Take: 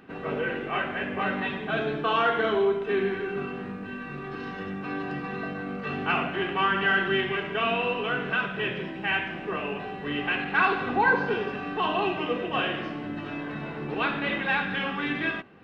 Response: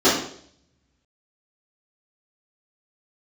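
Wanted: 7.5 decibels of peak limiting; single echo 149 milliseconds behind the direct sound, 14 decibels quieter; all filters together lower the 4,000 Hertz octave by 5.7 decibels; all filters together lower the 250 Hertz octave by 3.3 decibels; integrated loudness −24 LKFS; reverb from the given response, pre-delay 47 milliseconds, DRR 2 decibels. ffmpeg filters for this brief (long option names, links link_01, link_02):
-filter_complex "[0:a]equalizer=frequency=250:width_type=o:gain=-4.5,equalizer=frequency=4000:width_type=o:gain=-9,alimiter=limit=-19.5dB:level=0:latency=1,aecho=1:1:149:0.2,asplit=2[link_01][link_02];[1:a]atrim=start_sample=2205,adelay=47[link_03];[link_02][link_03]afir=irnorm=-1:irlink=0,volume=-24.5dB[link_04];[link_01][link_04]amix=inputs=2:normalize=0,volume=2.5dB"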